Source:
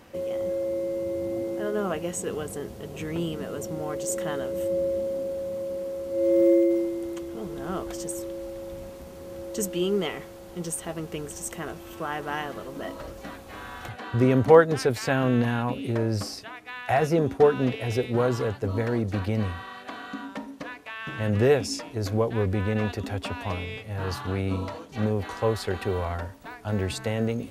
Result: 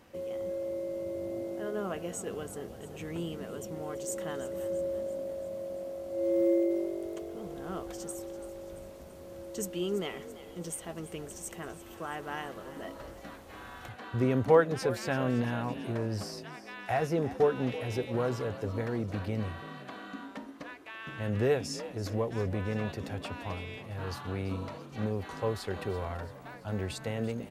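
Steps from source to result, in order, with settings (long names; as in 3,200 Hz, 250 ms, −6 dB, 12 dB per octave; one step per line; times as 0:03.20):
echo with shifted repeats 336 ms, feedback 58%, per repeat +47 Hz, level −15.5 dB
0:17.69–0:18.65: one half of a high-frequency compander encoder only
level −7 dB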